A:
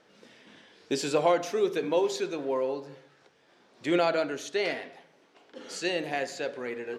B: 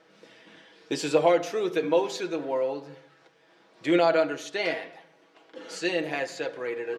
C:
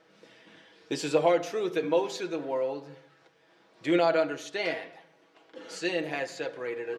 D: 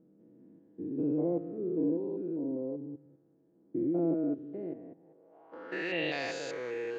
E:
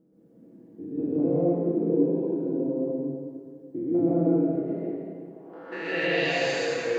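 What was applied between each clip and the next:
bass and treble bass −4 dB, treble −4 dB; comb filter 6.2 ms, depth 59%; level +1.5 dB
parametric band 89 Hz +6 dB 0.86 octaves; level −2.5 dB
spectrum averaged block by block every 200 ms; low-pass filter sweep 280 Hz → 6,300 Hz, 0:04.96–0:06.34
dense smooth reverb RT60 1.9 s, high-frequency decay 1×, pre-delay 110 ms, DRR −8 dB

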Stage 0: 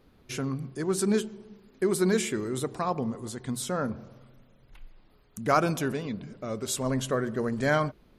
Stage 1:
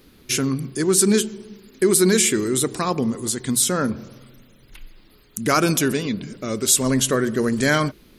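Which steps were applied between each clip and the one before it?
drawn EQ curve 120 Hz 0 dB, 340 Hz +5 dB, 710 Hz −4 dB, 1,900 Hz +5 dB, 10,000 Hz +14 dB
in parallel at 0 dB: brickwall limiter −16.5 dBFS, peak gain reduction 11 dB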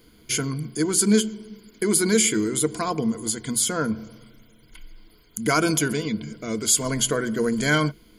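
EQ curve with evenly spaced ripples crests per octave 1.8, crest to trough 11 dB
level −4 dB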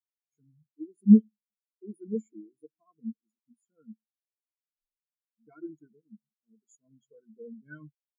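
every bin expanded away from the loudest bin 4 to 1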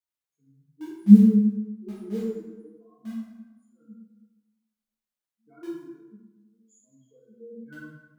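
in parallel at −12 dB: bit reduction 6 bits
on the sum: dense smooth reverb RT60 1.1 s, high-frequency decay 0.65×, DRR −8 dB
level −5 dB

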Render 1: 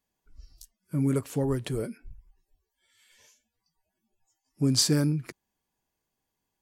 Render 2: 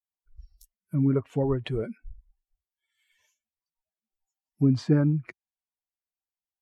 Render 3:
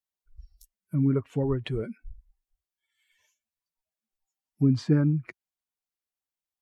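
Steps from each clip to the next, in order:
spectral dynamics exaggerated over time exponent 1.5; treble cut that deepens with the level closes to 1,400 Hz, closed at −25.5 dBFS; level +4.5 dB
dynamic equaliser 690 Hz, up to −6 dB, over −43 dBFS, Q 1.5

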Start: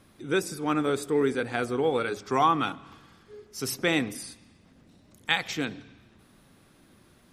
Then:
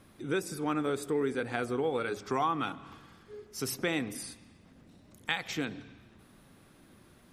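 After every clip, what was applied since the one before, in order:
downward compressor 2 to 1, threshold −31 dBFS, peak gain reduction 8 dB
parametric band 5,100 Hz −2.5 dB 1.6 octaves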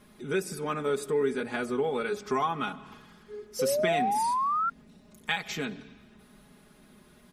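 comb filter 4.8 ms, depth 80%
sound drawn into the spectrogram rise, 0:03.59–0:04.70, 500–1,400 Hz −27 dBFS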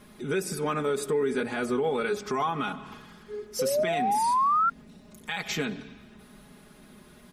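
brickwall limiter −23.5 dBFS, peak gain reduction 11 dB
level +4.5 dB

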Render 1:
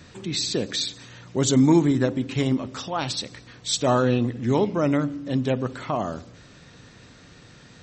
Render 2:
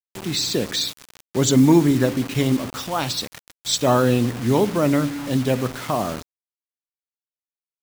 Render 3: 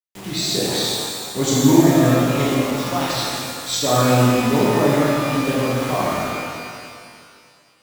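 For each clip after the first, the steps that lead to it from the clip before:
bit reduction 6 bits; level +3 dB
reverb with rising layers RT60 2.2 s, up +12 semitones, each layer −8 dB, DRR −7 dB; level −5.5 dB

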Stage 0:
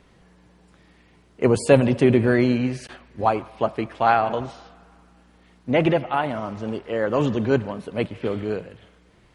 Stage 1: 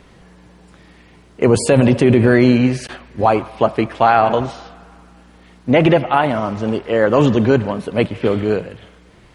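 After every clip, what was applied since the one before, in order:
boost into a limiter +10 dB
level −1 dB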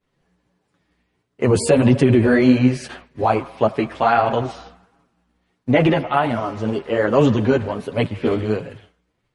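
downward expander −33 dBFS
multi-voice chorus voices 2, 1.5 Hz, delay 10 ms, depth 3 ms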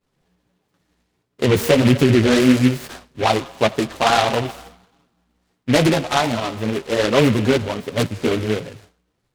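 short delay modulated by noise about 2,100 Hz, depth 0.095 ms

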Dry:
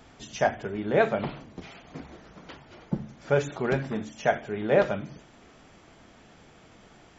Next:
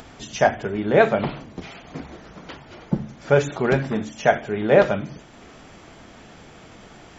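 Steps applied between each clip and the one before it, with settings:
upward compression, threshold −46 dBFS
level +6.5 dB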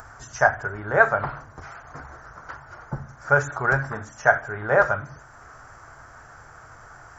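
drawn EQ curve 130 Hz 0 dB, 180 Hz −17 dB, 350 Hz −12 dB, 1,500 Hz +9 dB, 2,400 Hz −13 dB, 3,500 Hz −19 dB, 5,400 Hz −3 dB, 10,000 Hz +1 dB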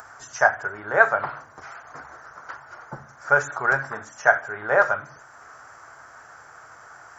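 high-pass filter 500 Hz 6 dB per octave
level +1.5 dB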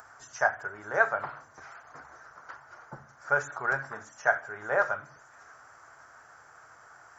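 delay with a high-pass on its return 604 ms, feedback 55%, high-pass 4,400 Hz, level −13 dB
level −7.5 dB

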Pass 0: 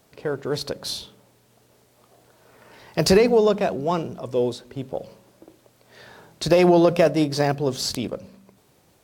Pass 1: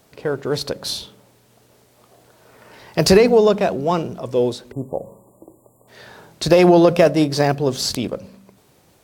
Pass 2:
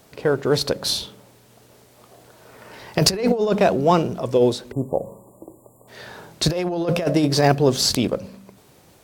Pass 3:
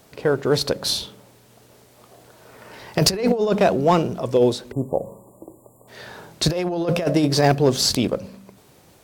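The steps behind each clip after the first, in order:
time-frequency box erased 0:04.72–0:05.88, 1,200–6,900 Hz; level +4 dB
compressor whose output falls as the input rises −16 dBFS, ratio −0.5
gain into a clipping stage and back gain 7.5 dB

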